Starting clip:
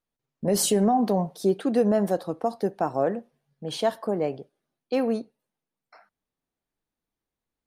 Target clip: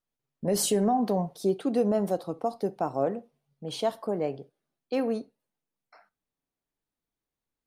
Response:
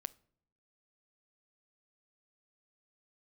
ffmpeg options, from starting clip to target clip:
-filter_complex "[0:a]asettb=1/sr,asplit=3[a][b][c];[a]atrim=end=1.384[d];[b]atrim=start=1.38:end=4.1,asetpts=PTS-STARTPTS,afade=t=in:d=0.004:c=qsin,afade=t=out:st=2.716:d=0.004:c=qsin,equalizer=f=1.7k:w=6.3:g=-9.5[e];[c]atrim=start=4.096[f];[d][e]acrossfade=d=0.004:c1=hsin:c2=qsin[g];[g][f]acrossfade=d=0.004:c1=qsin:c2=hsin[h];[1:a]atrim=start_sample=2205,atrim=end_sample=3528[i];[h][i]afir=irnorm=-1:irlink=0"

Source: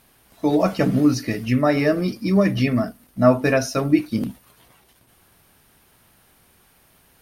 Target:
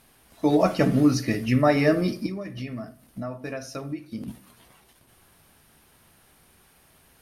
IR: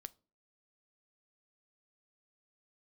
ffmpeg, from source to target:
-filter_complex "[0:a]asettb=1/sr,asplit=3[a][b][c];[a]atrim=end=2.264[d];[b]atrim=start=2.26:end=4.28,asetpts=PTS-STARTPTS,afade=t=in:d=0.004:c=qsin,afade=t=out:st=2.016:d=0.004:c=qsin,acompressor=threshold=-32dB:ratio=4[e];[c]atrim=start=4.276[f];[d][e]acrossfade=d=0.004:c1=hsin:c2=qsin[g];[g][f]acrossfade=d=0.004:c1=qsin:c2=hsin[h];[1:a]atrim=start_sample=2205,asetrate=23814,aresample=44100[i];[h][i]afir=irnorm=-1:irlink=0,volume=1.5dB"

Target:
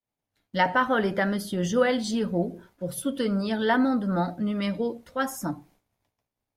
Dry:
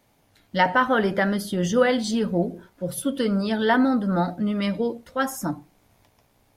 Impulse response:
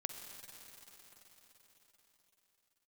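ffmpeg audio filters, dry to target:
-af "agate=range=-33dB:threshold=-49dB:ratio=3:detection=peak,volume=-3dB"

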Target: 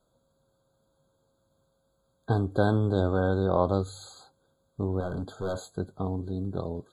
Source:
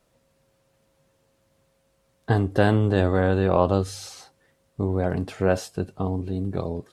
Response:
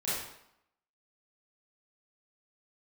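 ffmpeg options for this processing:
-filter_complex "[0:a]asettb=1/sr,asplit=3[a][b][c];[a]atrim=end=5.004[d];[b]atrim=start=5:end=5.62,asetpts=PTS-STARTPTS,afade=t=in:d=0.004:c=qsin,afade=t=out:st=0.616:d=0.004:c=qsin,volume=22.5dB,asoftclip=hard,volume=-22.5dB[e];[c]atrim=start=5.616[f];[d][e]acrossfade=d=0.004:c1=hsin:c2=qsin[g];[g][f]acrossfade=d=0.004:c1=qsin:c2=hsin,afftfilt=real='re*eq(mod(floor(b*sr/1024/1600),2),0)':imag='im*eq(mod(floor(b*sr/1024/1600),2),0)':win_size=1024:overlap=0.75,volume=-4.5dB"

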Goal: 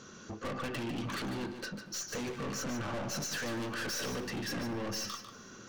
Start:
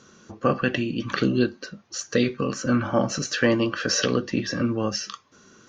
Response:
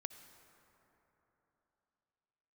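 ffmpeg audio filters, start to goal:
-filter_complex "[0:a]acompressor=threshold=-22dB:ratio=6,aeval=exprs='(tanh(70.8*val(0)+0.15)-tanh(0.15))/70.8':c=same,asplit=2[a][b];[1:a]atrim=start_sample=2205,adelay=147[c];[b][c]afir=irnorm=-1:irlink=0,volume=-5dB[d];[a][d]amix=inputs=2:normalize=0,volume=1.5dB"

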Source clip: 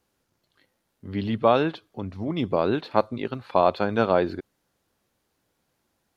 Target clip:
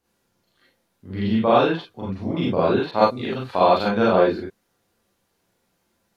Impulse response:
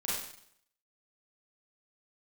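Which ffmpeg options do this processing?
-filter_complex "[1:a]atrim=start_sample=2205,atrim=end_sample=4410[a];[0:a][a]afir=irnorm=-1:irlink=0,asettb=1/sr,asplit=3[b][c][d];[b]atrim=end=2.914[e];[c]atrim=start=2.91:end=3.91,asetpts=PTS-STARTPTS,afade=t=in:d=0.004:c=qsin,afade=t=out:st=0.996:d=0.004:c=qsin,adynamicequalizer=threshold=0.0158:dfrequency=3000:dqfactor=0.7:tfrequency=3000:tqfactor=0.7:attack=5:release=100:ratio=0.375:range=3.5:mode=boostabove:tftype=highshelf[f];[d]atrim=start=3.906[g];[e][f]acrossfade=d=0.004:c1=hsin:c2=qsin[h];[h][g]acrossfade=d=0.004:c1=qsin:c2=hsin"

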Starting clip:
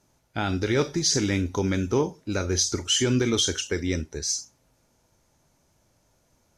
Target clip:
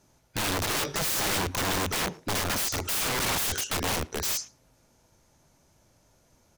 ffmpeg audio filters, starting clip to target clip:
-filter_complex "[0:a]aeval=exprs='(mod(18.8*val(0)+1,2)-1)/18.8':c=same,asplit=2[a][b];[b]adelay=110,highpass=300,lowpass=3.4k,asoftclip=type=hard:threshold=-33.5dB,volume=-19dB[c];[a][c]amix=inputs=2:normalize=0,volume=2.5dB"

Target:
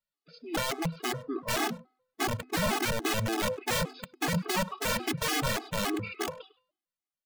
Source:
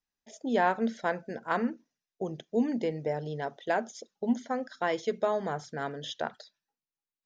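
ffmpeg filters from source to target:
-filter_complex "[0:a]lowshelf=f=130:g=-9,bandreject=f=350.6:t=h:w=4,bandreject=f=701.2:t=h:w=4,bandreject=f=1.0518k:t=h:w=4,bandreject=f=1.4024k:t=h:w=4,bandreject=f=1.753k:t=h:w=4,bandreject=f=2.1036k:t=h:w=4,bandreject=f=2.4542k:t=h:w=4,bandreject=f=2.8048k:t=h:w=4,bandreject=f=3.1554k:t=h:w=4,bandreject=f=3.506k:t=h:w=4,bandreject=f=3.8566k:t=h:w=4,bandreject=f=4.2072k:t=h:w=4,bandreject=f=4.5578k:t=h:w=4,bandreject=f=4.9084k:t=h:w=4,bandreject=f=5.259k:t=h:w=4,bandreject=f=5.6096k:t=h:w=4,bandreject=f=5.9602k:t=h:w=4,bandreject=f=6.3108k:t=h:w=4,bandreject=f=6.6614k:t=h:w=4,bandreject=f=7.012k:t=h:w=4,bandreject=f=7.3626k:t=h:w=4,bandreject=f=7.7132k:t=h:w=4,bandreject=f=8.0638k:t=h:w=4,bandreject=f=8.4144k:t=h:w=4,bandreject=f=8.765k:t=h:w=4,bandreject=f=9.1156k:t=h:w=4,bandreject=f=9.4662k:t=h:w=4,bandreject=f=9.8168k:t=h:w=4,bandreject=f=10.1674k:t=h:w=4,bandreject=f=10.518k:t=h:w=4,bandreject=f=10.8686k:t=h:w=4,bandreject=f=11.2192k:t=h:w=4,acrossover=split=2600[a][b];[a]dynaudnorm=f=310:g=9:m=15.5dB[c];[b]alimiter=level_in=12.5dB:limit=-24dB:level=0:latency=1:release=368,volume=-12.5dB[d];[c][d]amix=inputs=2:normalize=0,asoftclip=type=tanh:threshold=-15.5dB,asetrate=32097,aresample=44100,atempo=1.37395,aeval=exprs='(mod(10.6*val(0)+1,2)-1)/10.6':c=same,asplit=2[e][f];[f]adelay=100,highpass=300,lowpass=3.4k,asoftclip=type=hard:threshold=-29.5dB,volume=-15dB[g];[e][g]amix=inputs=2:normalize=0,afftfilt=real='re*gt(sin(2*PI*3.5*pts/sr)*(1-2*mod(floor(b*sr/1024/220),2)),0)':imag='im*gt(sin(2*PI*3.5*pts/sr)*(1-2*mod(floor(b*sr/1024/220),2)),0)':win_size=1024:overlap=0.75"

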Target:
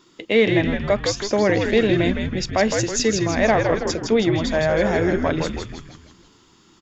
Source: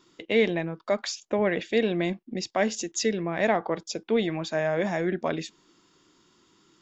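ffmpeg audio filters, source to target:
-filter_complex "[0:a]acontrast=48,asplit=7[a][b][c][d][e][f][g];[b]adelay=161,afreqshift=-100,volume=-4.5dB[h];[c]adelay=322,afreqshift=-200,volume=-10.5dB[i];[d]adelay=483,afreqshift=-300,volume=-16.5dB[j];[e]adelay=644,afreqshift=-400,volume=-22.6dB[k];[f]adelay=805,afreqshift=-500,volume=-28.6dB[l];[g]adelay=966,afreqshift=-600,volume=-34.6dB[m];[a][h][i][j][k][l][m]amix=inputs=7:normalize=0"

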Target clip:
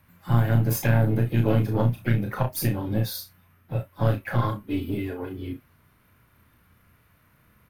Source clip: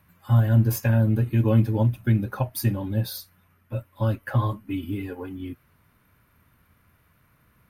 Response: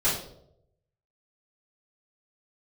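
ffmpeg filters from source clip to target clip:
-filter_complex "[0:a]acrossover=split=420[a][b];[a]alimiter=limit=-18dB:level=0:latency=1:release=223[c];[c][b]amix=inputs=2:normalize=0,aeval=exprs='0.211*(cos(1*acos(clip(val(0)/0.211,-1,1)))-cos(1*PI/2))+0.0668*(cos(2*acos(clip(val(0)/0.211,-1,1)))-cos(2*PI/2))+0.00335*(cos(8*acos(clip(val(0)/0.211,-1,1)))-cos(8*PI/2))':c=same,asplit=4[d][e][f][g];[e]asetrate=55563,aresample=44100,atempo=0.793701,volume=-15dB[h];[f]asetrate=58866,aresample=44100,atempo=0.749154,volume=-16dB[i];[g]asetrate=66075,aresample=44100,atempo=0.66742,volume=-17dB[j];[d][h][i][j]amix=inputs=4:normalize=0,aecho=1:1:34|63:0.562|0.168"

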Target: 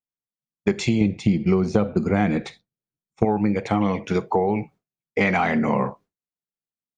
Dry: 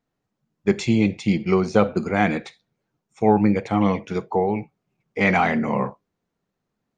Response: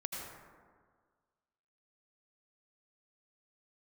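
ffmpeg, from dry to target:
-filter_complex "[0:a]agate=range=-33dB:threshold=-42dB:ratio=3:detection=peak,asettb=1/sr,asplit=3[a][b][c];[a]atrim=end=1.014[d];[b]atrim=start=1.01:end=3.25,asetpts=PTS-STARTPTS,afade=t=in:d=0.004:c=qsin,afade=t=out:st=2.236:d=0.004:c=qsin,lowshelf=f=420:g=10[e];[c]atrim=start=3.246[f];[d][e]acrossfade=d=0.004:c1=hsin:c2=qsin[g];[g][f]acrossfade=d=0.004:c1=qsin:c2=hsin,acompressor=threshold=-24dB:ratio=5,volume=6.5dB"

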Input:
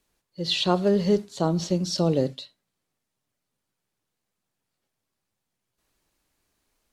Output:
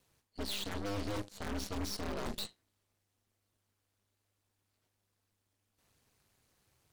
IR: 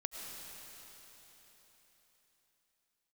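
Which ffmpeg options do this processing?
-af "areverse,acompressor=threshold=-34dB:ratio=10,areverse,aeval=exprs='0.0211*(abs(mod(val(0)/0.0211+3,4)-2)-1)':c=same,aeval=exprs='val(0)*sin(2*PI*100*n/s)':c=same,aeval=exprs='0.0211*(cos(1*acos(clip(val(0)/0.0211,-1,1)))-cos(1*PI/2))+0.00531*(cos(8*acos(clip(val(0)/0.0211,-1,1)))-cos(8*PI/2))':c=same,volume=3dB"

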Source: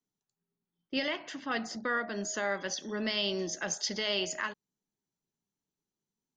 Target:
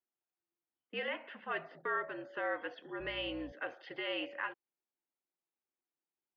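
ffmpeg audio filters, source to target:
-filter_complex "[0:a]highpass=f=380:t=q:w=0.5412,highpass=f=380:t=q:w=1.307,lowpass=f=2.9k:t=q:w=0.5176,lowpass=f=2.9k:t=q:w=0.7071,lowpass=f=2.9k:t=q:w=1.932,afreqshift=-62,asettb=1/sr,asplit=3[a][b][c];[a]atrim=end=3.004[d];[b]atrim=start=3:end=3.52,asetpts=PTS-STARTPTS,afade=t=in:d=0.004:c=qsin,afade=t=out:st=0.516:d=0.004:c=qsin,aeval=exprs='val(0)+0.00355*(sin(2*PI*60*n/s)+sin(2*PI*2*60*n/s)/2+sin(2*PI*3*60*n/s)/3+sin(2*PI*4*60*n/s)/4+sin(2*PI*5*60*n/s)/5)':c=same[e];[c]atrim=start=3.516[f];[d][e]acrossfade=d=0.004:c1=hsin:c2=qsin[g];[g][f]acrossfade=d=0.004:c1=qsin:c2=hsin,volume=-3.5dB"

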